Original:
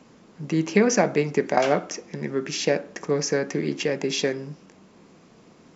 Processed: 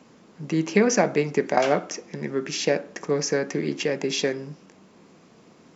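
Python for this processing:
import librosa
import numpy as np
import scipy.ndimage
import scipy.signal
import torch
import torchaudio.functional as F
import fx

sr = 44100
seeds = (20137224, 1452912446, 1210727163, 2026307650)

y = fx.low_shelf(x, sr, hz=61.0, db=-9.5)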